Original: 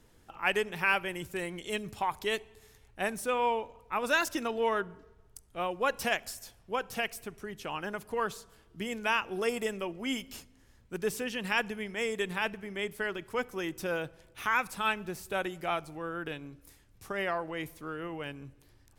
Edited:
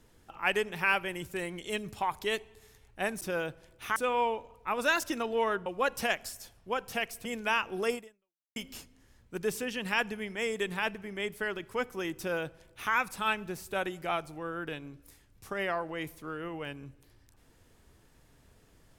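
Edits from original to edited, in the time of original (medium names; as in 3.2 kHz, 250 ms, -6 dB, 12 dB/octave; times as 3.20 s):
4.91–5.68 s: delete
7.27–8.84 s: delete
9.53–10.15 s: fade out exponential
13.77–14.52 s: copy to 3.21 s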